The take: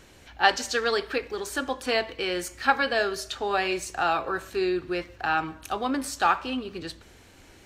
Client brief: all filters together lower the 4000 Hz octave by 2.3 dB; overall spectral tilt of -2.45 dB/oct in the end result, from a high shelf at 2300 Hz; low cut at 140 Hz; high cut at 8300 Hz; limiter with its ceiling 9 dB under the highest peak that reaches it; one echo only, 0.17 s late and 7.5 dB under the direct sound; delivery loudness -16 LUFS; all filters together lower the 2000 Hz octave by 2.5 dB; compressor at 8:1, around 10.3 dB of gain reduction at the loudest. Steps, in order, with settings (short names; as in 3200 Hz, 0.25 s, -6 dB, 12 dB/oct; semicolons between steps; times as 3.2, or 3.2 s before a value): HPF 140 Hz; LPF 8300 Hz; bell 2000 Hz -5 dB; high shelf 2300 Hz +6.5 dB; bell 4000 Hz -7 dB; compressor 8:1, threshold -26 dBFS; limiter -23.5 dBFS; echo 0.17 s -7.5 dB; gain +17 dB